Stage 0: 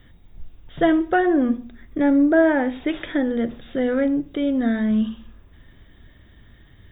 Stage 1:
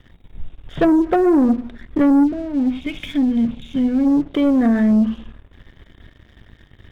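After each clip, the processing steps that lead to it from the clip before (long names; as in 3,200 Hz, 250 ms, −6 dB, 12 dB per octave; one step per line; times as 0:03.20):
treble cut that deepens with the level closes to 460 Hz, closed at −13.5 dBFS
gain on a spectral selection 0:02.24–0:04.07, 280–2,100 Hz −16 dB
leveller curve on the samples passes 2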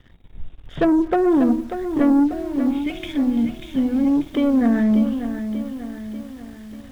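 feedback echo at a low word length 590 ms, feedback 55%, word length 7 bits, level −9 dB
level −2.5 dB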